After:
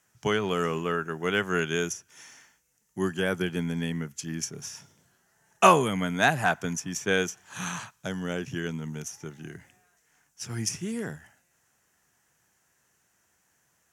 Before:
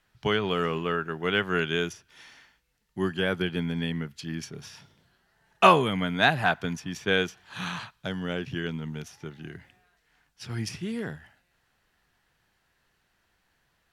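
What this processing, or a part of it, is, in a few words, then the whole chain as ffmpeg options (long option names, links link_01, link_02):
budget condenser microphone: -af "highpass=89,highshelf=frequency=5200:width_type=q:width=3:gain=7.5"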